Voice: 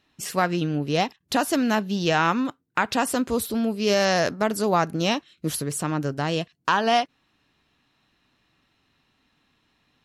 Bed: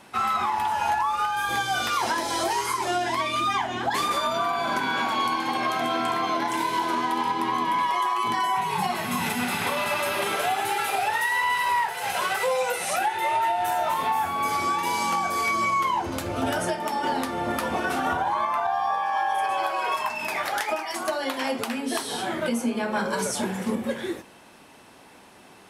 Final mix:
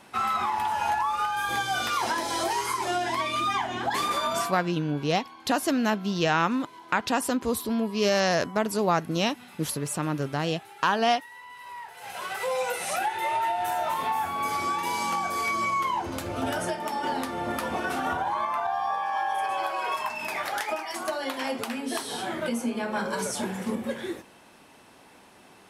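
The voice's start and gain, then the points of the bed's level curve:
4.15 s, −2.5 dB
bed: 0:04.39 −2 dB
0:04.72 −22 dB
0:11.49 −22 dB
0:12.57 −3 dB

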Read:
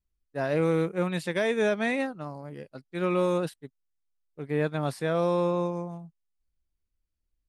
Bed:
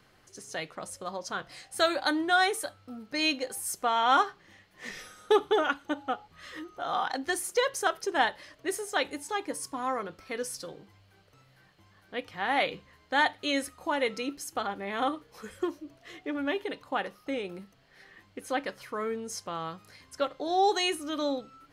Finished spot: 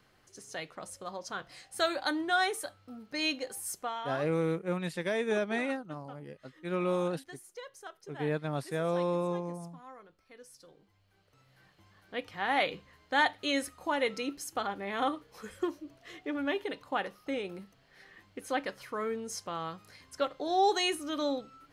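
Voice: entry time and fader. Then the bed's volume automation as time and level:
3.70 s, −5.0 dB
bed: 0:03.74 −4 dB
0:04.20 −19 dB
0:10.41 −19 dB
0:11.64 −1.5 dB

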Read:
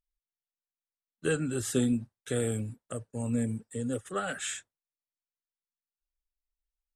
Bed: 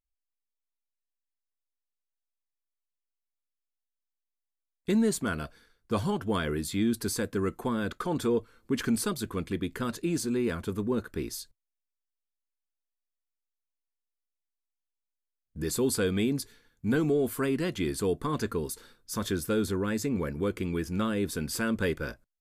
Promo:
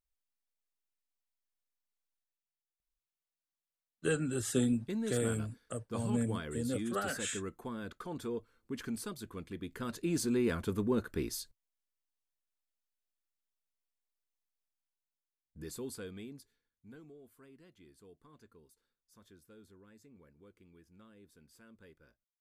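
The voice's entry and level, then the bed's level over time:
2.80 s, −3.0 dB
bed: 0:02.17 −1.5 dB
0:02.45 −11.5 dB
0:09.55 −11.5 dB
0:10.23 −2 dB
0:14.64 −2 dB
0:17.21 −30 dB

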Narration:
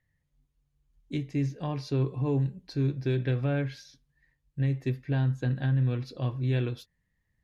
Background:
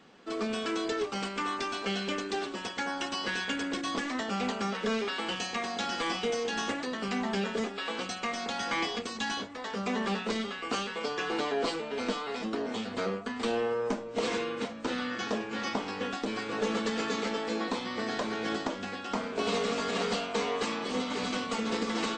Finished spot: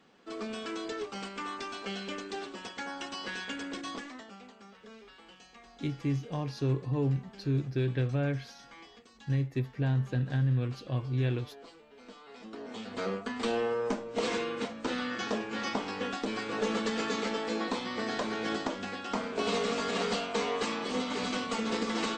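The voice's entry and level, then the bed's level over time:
4.70 s, −2.0 dB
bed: 0:03.89 −5.5 dB
0:04.48 −21 dB
0:11.98 −21 dB
0:13.13 −0.5 dB

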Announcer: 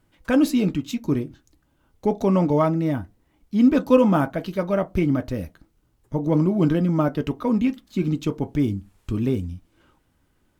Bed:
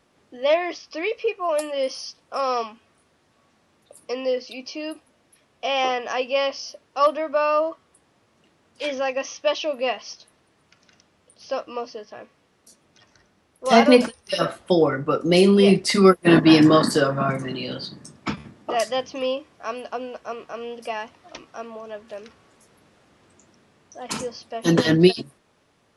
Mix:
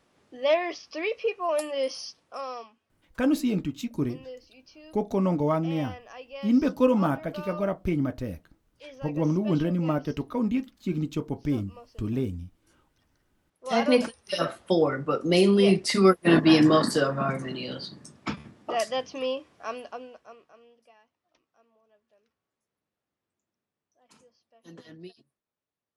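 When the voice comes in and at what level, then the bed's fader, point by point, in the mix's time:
2.90 s, −5.5 dB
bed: 0:02.04 −3.5 dB
0:02.78 −18.5 dB
0:13.30 −18.5 dB
0:14.08 −4.5 dB
0:19.75 −4.5 dB
0:20.97 −30 dB

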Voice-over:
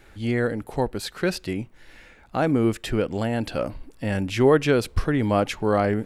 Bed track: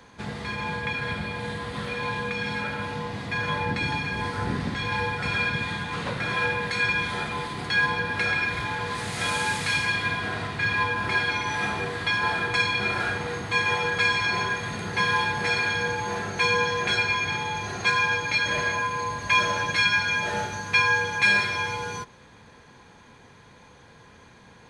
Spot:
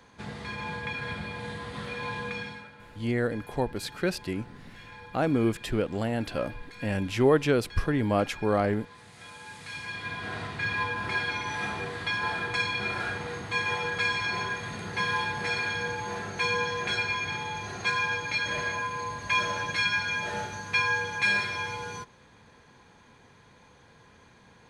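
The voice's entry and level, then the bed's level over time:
2.80 s, −4.0 dB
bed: 0:02.37 −5 dB
0:02.72 −20 dB
0:09.38 −20 dB
0:10.35 −5 dB

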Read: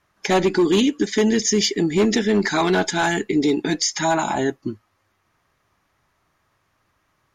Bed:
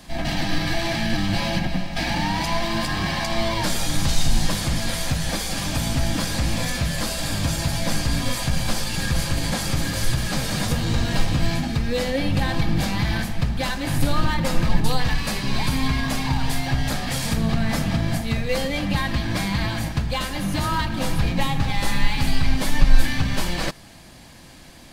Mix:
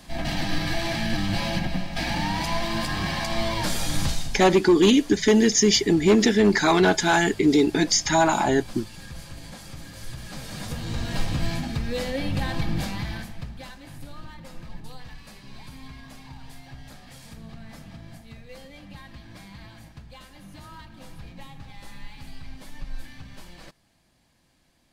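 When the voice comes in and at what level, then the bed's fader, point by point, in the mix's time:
4.10 s, +0.5 dB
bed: 0:04.06 −3 dB
0:04.40 −17 dB
0:09.90 −17 dB
0:11.27 −5 dB
0:12.76 −5 dB
0:14.02 −20.5 dB

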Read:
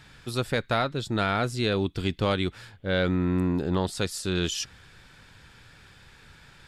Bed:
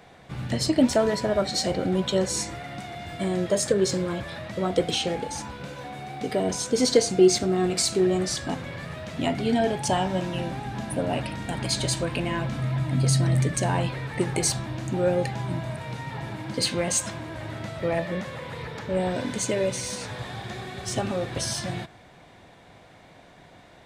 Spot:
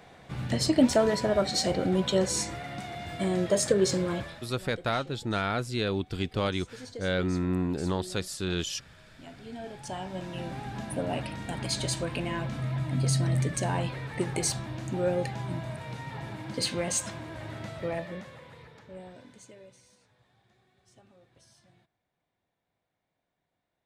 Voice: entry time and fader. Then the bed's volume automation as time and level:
4.15 s, −3.5 dB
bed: 0:04.20 −1.5 dB
0:04.61 −23 dB
0:09.21 −23 dB
0:10.59 −4.5 dB
0:17.72 −4.5 dB
0:20.09 −32 dB

